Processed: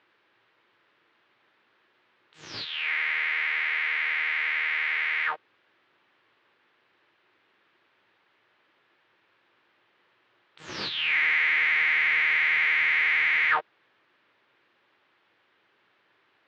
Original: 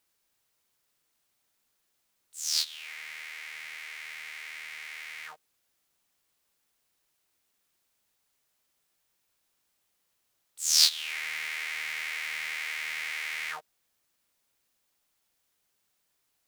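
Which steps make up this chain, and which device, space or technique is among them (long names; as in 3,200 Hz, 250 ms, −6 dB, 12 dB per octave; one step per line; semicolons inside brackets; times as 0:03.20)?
overdrive pedal into a guitar cabinet (mid-hump overdrive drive 32 dB, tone 1,400 Hz, clips at −2 dBFS; loudspeaker in its box 90–3,500 Hz, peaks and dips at 110 Hz +10 dB, 350 Hz +7 dB, 710 Hz −5 dB, 1,700 Hz +3 dB)
level −4.5 dB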